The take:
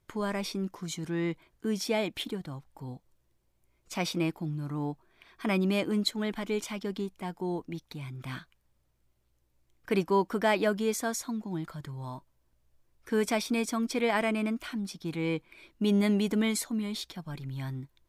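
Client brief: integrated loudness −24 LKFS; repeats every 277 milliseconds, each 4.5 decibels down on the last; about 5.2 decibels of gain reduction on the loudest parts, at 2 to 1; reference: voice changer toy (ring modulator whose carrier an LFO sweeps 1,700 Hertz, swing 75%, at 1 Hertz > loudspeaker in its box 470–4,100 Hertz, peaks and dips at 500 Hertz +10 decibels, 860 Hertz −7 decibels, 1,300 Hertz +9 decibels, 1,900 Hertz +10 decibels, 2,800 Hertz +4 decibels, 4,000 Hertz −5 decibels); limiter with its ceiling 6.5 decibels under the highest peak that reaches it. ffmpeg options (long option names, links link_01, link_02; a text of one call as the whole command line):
ffmpeg -i in.wav -af "acompressor=threshold=-30dB:ratio=2,alimiter=level_in=0.5dB:limit=-24dB:level=0:latency=1,volume=-0.5dB,aecho=1:1:277|554|831|1108|1385|1662|1939|2216|2493:0.596|0.357|0.214|0.129|0.0772|0.0463|0.0278|0.0167|0.01,aeval=exprs='val(0)*sin(2*PI*1700*n/s+1700*0.75/1*sin(2*PI*1*n/s))':channel_layout=same,highpass=470,equalizer=frequency=500:width_type=q:width=4:gain=10,equalizer=frequency=860:width_type=q:width=4:gain=-7,equalizer=frequency=1300:width_type=q:width=4:gain=9,equalizer=frequency=1900:width_type=q:width=4:gain=10,equalizer=frequency=2800:width_type=q:width=4:gain=4,equalizer=frequency=4000:width_type=q:width=4:gain=-5,lowpass=frequency=4100:width=0.5412,lowpass=frequency=4100:width=1.3066,volume=6dB" out.wav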